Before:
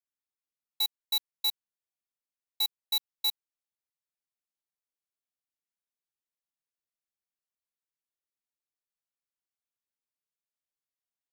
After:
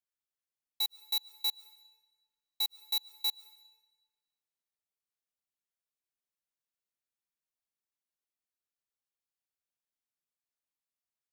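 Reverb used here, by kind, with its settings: algorithmic reverb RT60 1.3 s, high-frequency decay 0.95×, pre-delay 90 ms, DRR 18.5 dB; trim -3 dB

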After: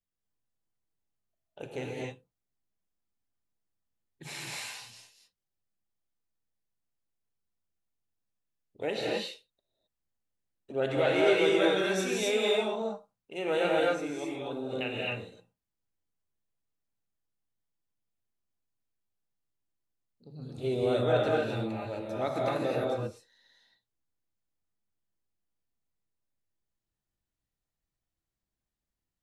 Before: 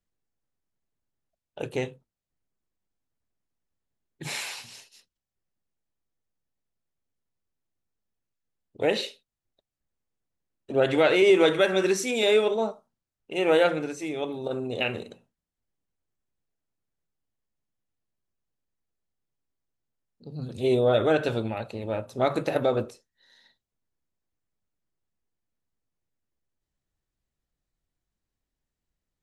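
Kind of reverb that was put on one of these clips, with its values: gated-style reverb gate 290 ms rising, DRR -3.5 dB; trim -9 dB

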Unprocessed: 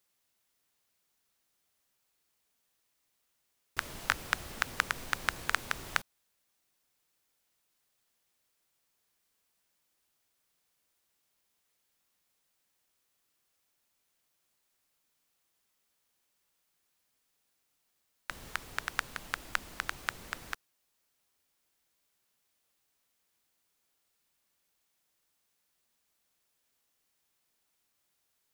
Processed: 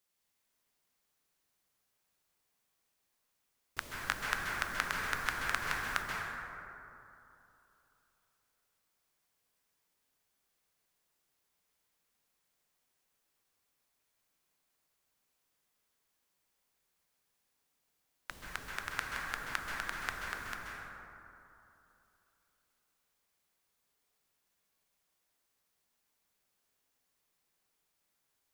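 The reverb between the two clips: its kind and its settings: plate-style reverb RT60 3 s, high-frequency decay 0.35×, pre-delay 120 ms, DRR -2 dB; trim -5 dB

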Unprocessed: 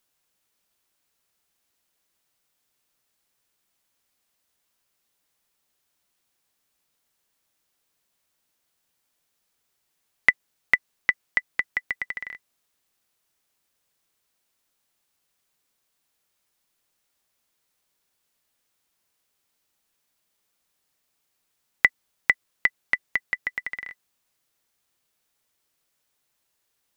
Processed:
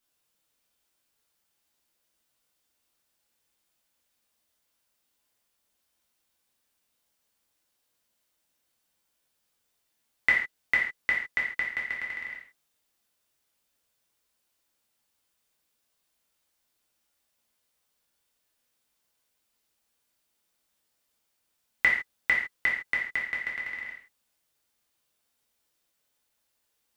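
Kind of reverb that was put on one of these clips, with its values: gated-style reverb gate 180 ms falling, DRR -4.5 dB; trim -7.5 dB

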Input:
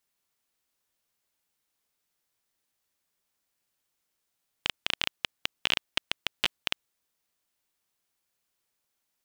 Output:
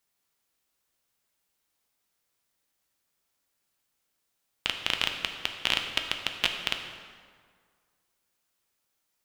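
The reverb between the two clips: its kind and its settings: plate-style reverb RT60 1.9 s, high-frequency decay 0.65×, DRR 4 dB; trim +1 dB

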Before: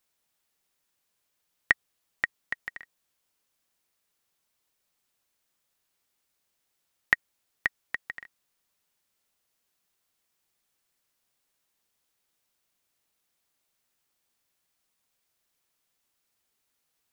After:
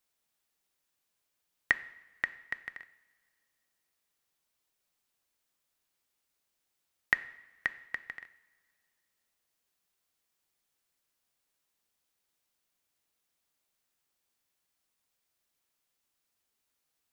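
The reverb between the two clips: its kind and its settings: two-slope reverb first 0.73 s, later 2.4 s, from -17 dB, DRR 13 dB; trim -4 dB

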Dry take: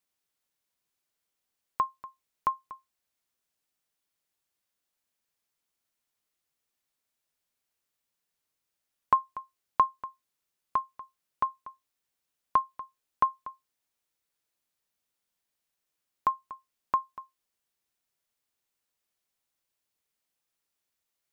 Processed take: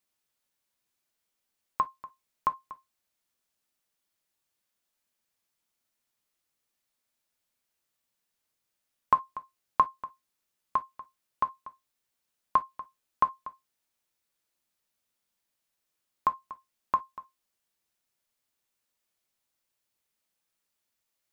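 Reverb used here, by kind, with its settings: gated-style reverb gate 80 ms falling, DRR 9.5 dB; trim +1 dB

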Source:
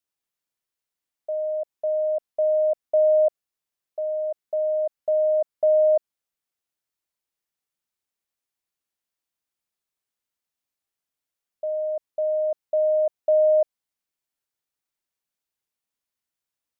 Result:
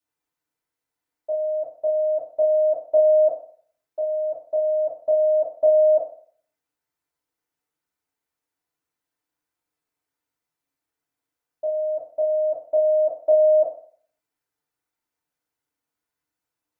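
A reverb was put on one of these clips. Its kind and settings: FDN reverb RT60 0.51 s, low-frequency decay 0.85×, high-frequency decay 0.25×, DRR -8 dB; trim -3.5 dB

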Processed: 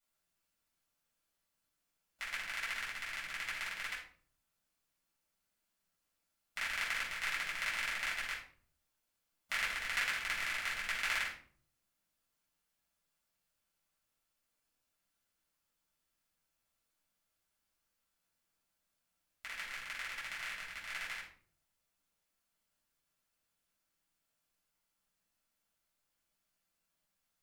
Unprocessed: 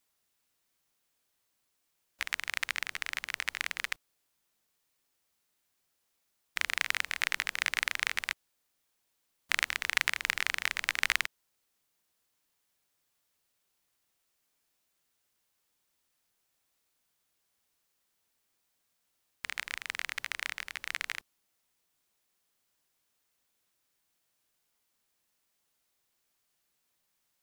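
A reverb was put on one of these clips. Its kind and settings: simulated room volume 480 m³, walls furnished, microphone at 7 m; trim -14.5 dB

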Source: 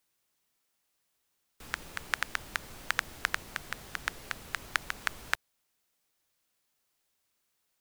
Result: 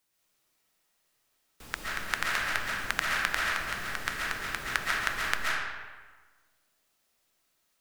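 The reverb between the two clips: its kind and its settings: algorithmic reverb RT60 1.4 s, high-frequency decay 0.7×, pre-delay 95 ms, DRR -4.5 dB

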